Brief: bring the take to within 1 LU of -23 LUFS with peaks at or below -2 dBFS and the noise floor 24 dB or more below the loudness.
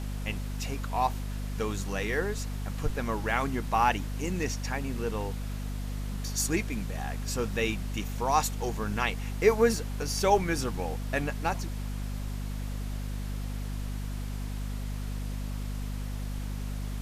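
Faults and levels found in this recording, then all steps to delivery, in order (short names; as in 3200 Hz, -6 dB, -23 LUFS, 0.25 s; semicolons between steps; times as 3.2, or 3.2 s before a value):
hum 50 Hz; harmonics up to 250 Hz; hum level -31 dBFS; noise floor -35 dBFS; noise floor target -56 dBFS; loudness -31.5 LUFS; peak -8.5 dBFS; loudness target -23.0 LUFS
-> de-hum 50 Hz, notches 5; denoiser 21 dB, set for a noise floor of -35 dBFS; gain +8.5 dB; limiter -2 dBFS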